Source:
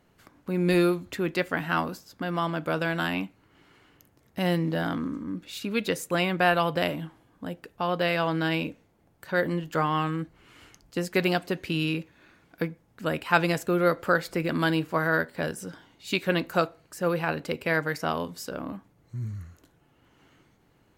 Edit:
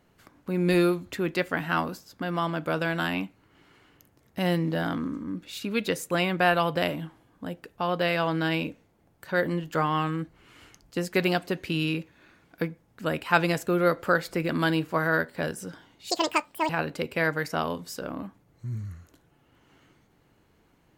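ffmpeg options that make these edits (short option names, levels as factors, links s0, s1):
-filter_complex "[0:a]asplit=3[s0][s1][s2];[s0]atrim=end=16.104[s3];[s1]atrim=start=16.1:end=17.19,asetpts=PTS-STARTPTS,asetrate=81144,aresample=44100,atrim=end_sample=26124,asetpts=PTS-STARTPTS[s4];[s2]atrim=start=17.186[s5];[s3][s4]acrossfade=d=0.004:c1=hsin:c2=hsin[s6];[s6][s5]acrossfade=d=0.004:c1=hsin:c2=hsin"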